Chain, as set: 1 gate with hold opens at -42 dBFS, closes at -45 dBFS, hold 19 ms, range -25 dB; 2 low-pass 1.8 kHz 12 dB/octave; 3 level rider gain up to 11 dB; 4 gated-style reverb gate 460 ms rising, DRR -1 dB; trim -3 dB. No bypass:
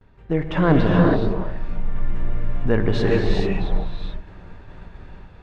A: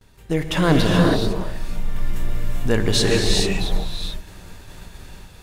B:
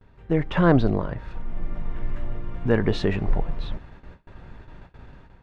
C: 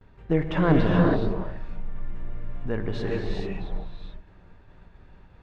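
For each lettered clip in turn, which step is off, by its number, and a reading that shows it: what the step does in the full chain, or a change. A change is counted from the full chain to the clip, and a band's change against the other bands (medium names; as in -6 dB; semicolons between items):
2, 4 kHz band +13.5 dB; 4, momentary loudness spread change +2 LU; 3, momentary loudness spread change +4 LU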